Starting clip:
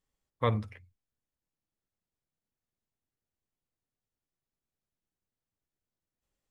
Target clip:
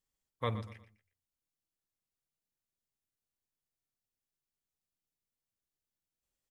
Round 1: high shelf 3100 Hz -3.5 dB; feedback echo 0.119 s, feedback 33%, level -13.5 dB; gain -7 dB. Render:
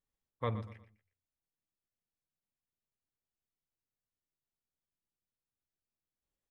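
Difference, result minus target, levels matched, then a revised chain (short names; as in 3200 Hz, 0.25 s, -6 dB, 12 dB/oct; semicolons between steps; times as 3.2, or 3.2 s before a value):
4000 Hz band -6.0 dB
high shelf 3100 Hz +8 dB; feedback echo 0.119 s, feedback 33%, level -13.5 dB; gain -7 dB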